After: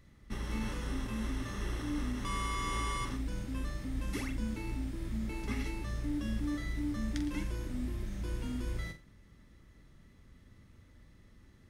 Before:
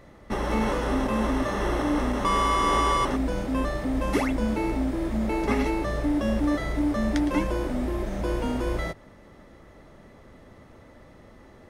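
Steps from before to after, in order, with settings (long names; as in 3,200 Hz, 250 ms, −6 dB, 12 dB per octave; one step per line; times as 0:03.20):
guitar amp tone stack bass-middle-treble 6-0-2
on a send: flutter between parallel walls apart 7.6 metres, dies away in 0.29 s
on the sum: level +7.5 dB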